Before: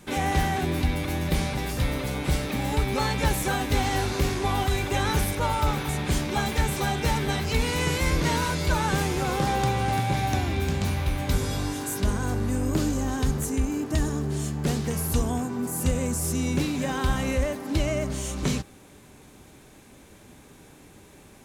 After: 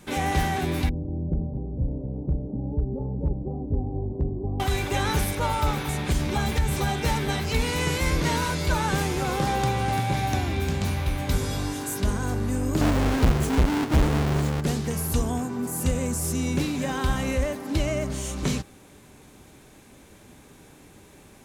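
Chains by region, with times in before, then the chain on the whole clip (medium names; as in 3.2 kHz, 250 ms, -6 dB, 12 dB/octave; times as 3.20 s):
0.89–4.60 s: Gaussian low-pass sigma 17 samples + hard clipper -16 dBFS
6.12–6.89 s: peaking EQ 62 Hz +8 dB 2.4 oct + compression 2.5:1, threshold -20 dBFS
12.81–14.61 s: square wave that keeps the level + treble shelf 6.2 kHz -7.5 dB
whole clip: none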